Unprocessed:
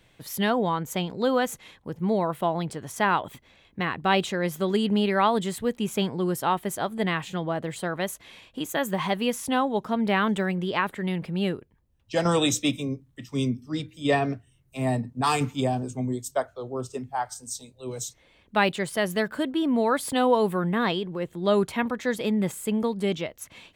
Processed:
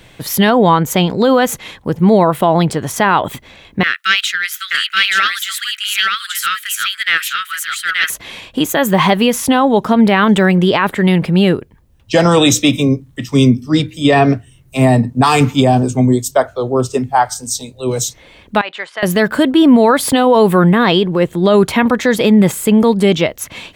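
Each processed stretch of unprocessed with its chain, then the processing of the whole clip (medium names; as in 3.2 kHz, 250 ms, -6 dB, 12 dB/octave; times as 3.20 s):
3.83–8.10 s: steep high-pass 1.3 kHz 96 dB/octave + delay 878 ms -3 dB + loudspeaker Doppler distortion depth 0.13 ms
18.61–19.03 s: high-pass 1.2 kHz + tape spacing loss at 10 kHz 32 dB + compression 5:1, threshold -33 dBFS
whole clip: dynamic bell 8.7 kHz, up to -4 dB, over -48 dBFS, Q 1.4; loudness maximiser +18 dB; trim -1 dB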